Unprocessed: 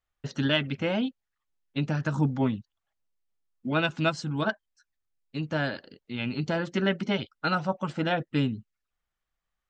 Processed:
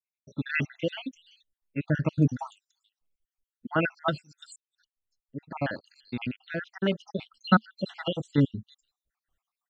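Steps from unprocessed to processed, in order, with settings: random holes in the spectrogram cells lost 69%; 7.34–7.75 s: peaking EQ 220 Hz +14 dB 0.52 oct; random-step tremolo 3.7 Hz; 4.22–6.17 s: fade in; bands offset in time lows, highs 340 ms, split 4.8 kHz; trim +6 dB

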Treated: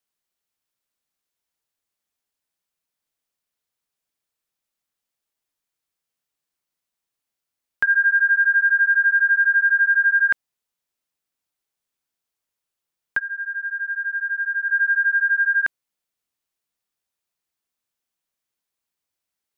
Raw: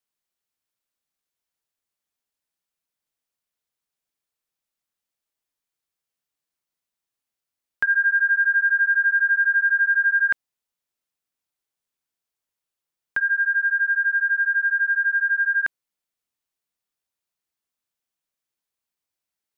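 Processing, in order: 13.18–14.68 s: low-pass 1.2 kHz -> 1.5 kHz 24 dB/octave; trim +2 dB

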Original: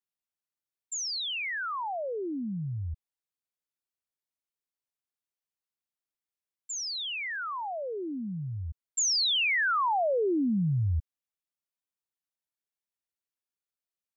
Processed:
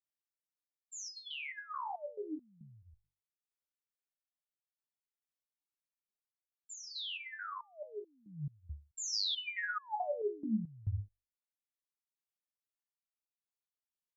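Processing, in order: hum notches 50/100 Hz; resonator arpeggio 4.6 Hz 73–840 Hz; trim +1.5 dB

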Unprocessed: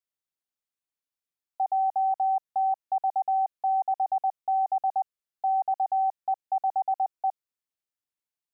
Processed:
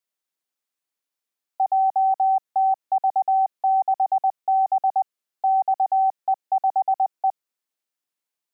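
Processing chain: high-pass 200 Hz 12 dB/octave; trim +5.5 dB

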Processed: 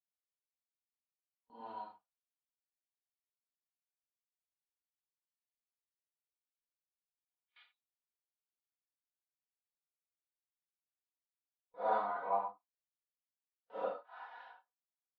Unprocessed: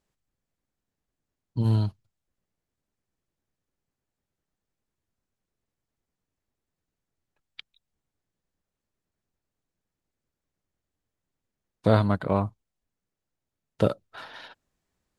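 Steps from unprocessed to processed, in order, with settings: phase randomisation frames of 200 ms; ladder band-pass 960 Hz, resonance 50%; comb 4.1 ms, depth 100%; gate with hold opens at -58 dBFS; Vorbis 128 kbps 32 kHz

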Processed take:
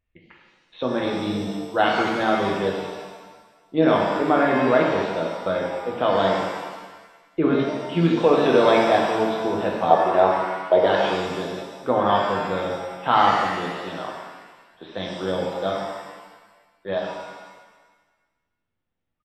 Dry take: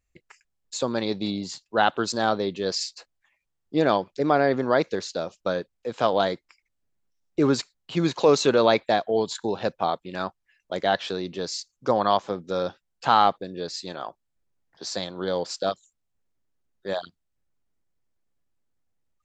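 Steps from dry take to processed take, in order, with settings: resampled via 8 kHz; 9.90–10.85 s: high-order bell 580 Hz +13 dB; pitch-shifted reverb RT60 1.3 s, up +7 st, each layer -8 dB, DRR -2 dB; trim -1 dB

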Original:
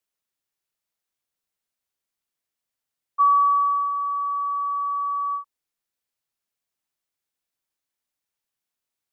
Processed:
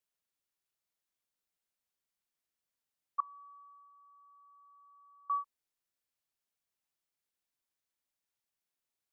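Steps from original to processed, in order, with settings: 3.20–5.30 s: feedback comb 980 Hz, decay 0.26 s, mix 100%; trim -5 dB

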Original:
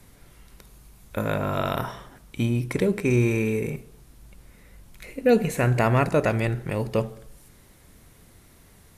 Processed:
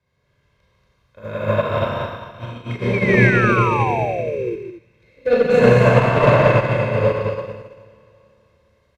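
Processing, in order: high-pass 67 Hz; treble shelf 4.7 kHz +8.5 dB; hum notches 50/100/150/200/250/300/350/400/450 Hz; comb 1.9 ms, depth 63%; Schroeder reverb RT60 3.1 s, combs from 29 ms, DRR -8 dB; saturation -9 dBFS, distortion -14 dB; painted sound fall, 2.93–4.56 s, 330–2400 Hz -20 dBFS; distance through air 230 m; loudspeakers at several distances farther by 51 m -5 dB, 80 m -2 dB; upward expansion 2.5:1, over -26 dBFS; trim +3 dB

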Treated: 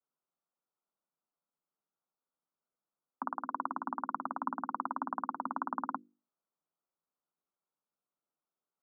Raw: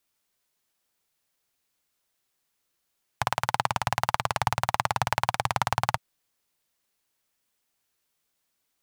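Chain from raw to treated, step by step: steep low-pass 1.3 kHz 72 dB/octave; hum notches 50/100/150/200/250/300/350 Hz; frequency shift +140 Hz; trim -9 dB

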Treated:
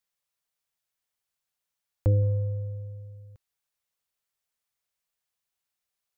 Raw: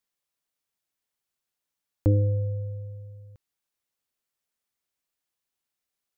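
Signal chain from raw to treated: peaking EQ 290 Hz -11.5 dB 0.69 oct; 2.22–3.16 s: sliding maximum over 3 samples

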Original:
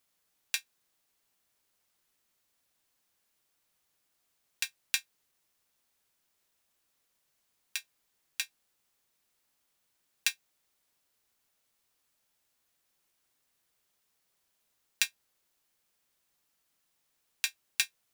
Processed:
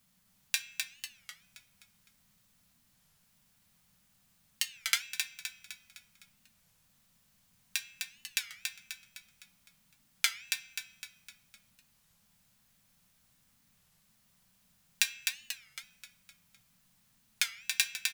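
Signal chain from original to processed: resonant low shelf 260 Hz +10 dB, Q 3; de-hum 237.7 Hz, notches 32; in parallel at +0.5 dB: compression, threshold -38 dBFS, peak gain reduction 14.5 dB; on the sum: frequency-shifting echo 255 ms, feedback 47%, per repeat -39 Hz, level -4.5 dB; on a send at -12.5 dB: reverberation RT60 0.55 s, pre-delay 4 ms; on the sum: warped record 33 1/3 rpm, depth 250 cents; trim -1 dB

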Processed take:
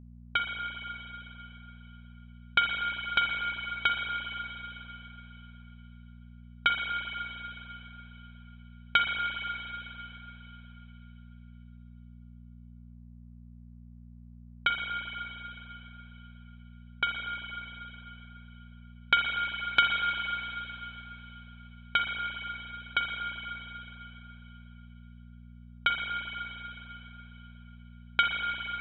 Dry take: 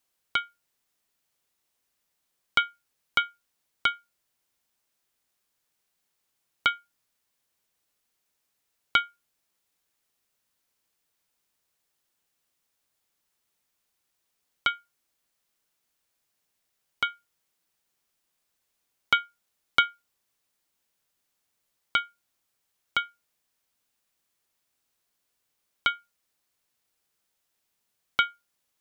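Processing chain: level-controlled noise filter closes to 910 Hz, open at -27 dBFS; spring tank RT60 3.6 s, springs 39/43/58 ms, chirp 25 ms, DRR 0.5 dB; mains buzz 60 Hz, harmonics 4, -48 dBFS -4 dB/octave; trim -1.5 dB

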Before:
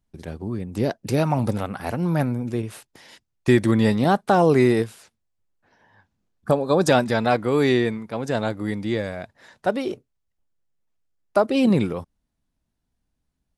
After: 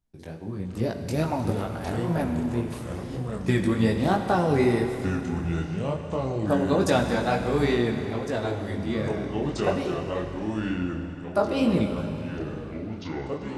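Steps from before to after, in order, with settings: chorus 2.3 Hz, delay 17 ms, depth 4.3 ms; ever faster or slower copies 393 ms, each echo -5 st, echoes 3, each echo -6 dB; Schroeder reverb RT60 3.3 s, combs from 33 ms, DRR 6 dB; trim -2 dB

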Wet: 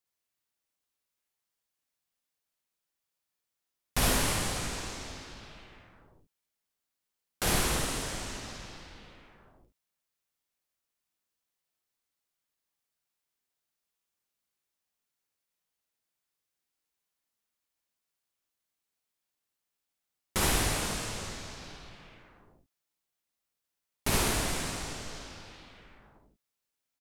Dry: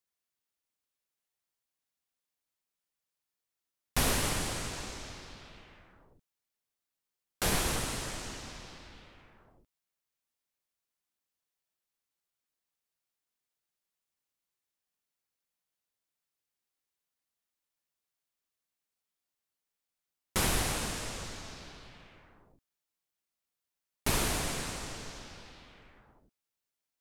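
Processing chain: early reflections 54 ms -3.5 dB, 73 ms -6.5 dB

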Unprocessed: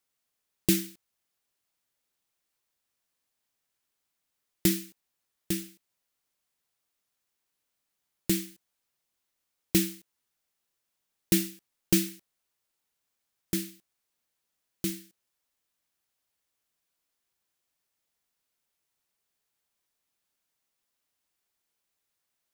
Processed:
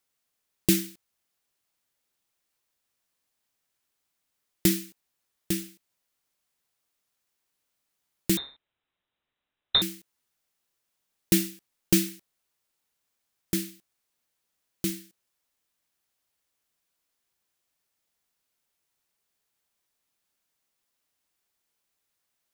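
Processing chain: 8.37–9.82 s: frequency inversion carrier 3.9 kHz; trim +2 dB

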